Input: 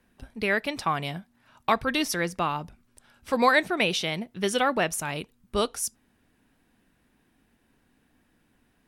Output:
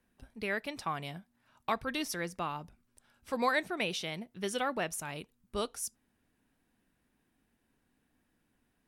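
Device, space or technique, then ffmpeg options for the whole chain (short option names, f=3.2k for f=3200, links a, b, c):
exciter from parts: -filter_complex "[0:a]asplit=2[a][b];[b]highpass=4.6k,asoftclip=type=tanh:threshold=-29.5dB,volume=-10dB[c];[a][c]amix=inputs=2:normalize=0,volume=-9dB"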